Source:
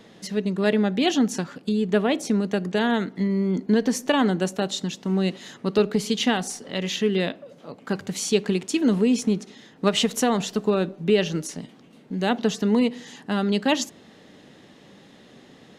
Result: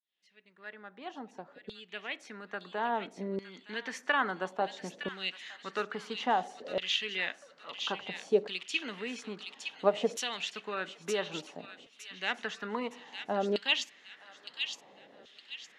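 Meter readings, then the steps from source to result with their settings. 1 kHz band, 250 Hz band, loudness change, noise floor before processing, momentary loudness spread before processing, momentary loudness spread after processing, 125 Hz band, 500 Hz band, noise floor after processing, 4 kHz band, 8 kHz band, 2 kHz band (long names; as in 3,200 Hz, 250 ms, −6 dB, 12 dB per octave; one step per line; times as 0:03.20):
−5.0 dB, −20.5 dB, −10.5 dB, −51 dBFS, 9 LU, 17 LU, −21.0 dB, −10.5 dB, −61 dBFS, −6.0 dB, −14.5 dB, −4.0 dB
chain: fade in at the beginning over 4.01 s
auto-filter band-pass saw down 0.59 Hz 520–3,500 Hz
delay with a high-pass on its return 913 ms, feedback 36%, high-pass 2,700 Hz, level −4 dB
level +2 dB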